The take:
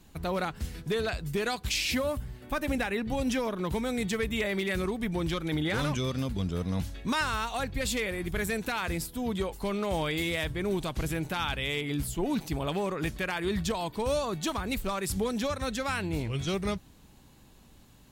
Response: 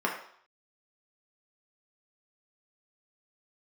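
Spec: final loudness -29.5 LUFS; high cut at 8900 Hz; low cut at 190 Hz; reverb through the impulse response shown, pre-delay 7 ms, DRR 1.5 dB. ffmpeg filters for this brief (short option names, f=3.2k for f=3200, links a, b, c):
-filter_complex "[0:a]highpass=190,lowpass=8.9k,asplit=2[a][b];[1:a]atrim=start_sample=2205,adelay=7[c];[b][c]afir=irnorm=-1:irlink=0,volume=-12dB[d];[a][d]amix=inputs=2:normalize=0,volume=0.5dB"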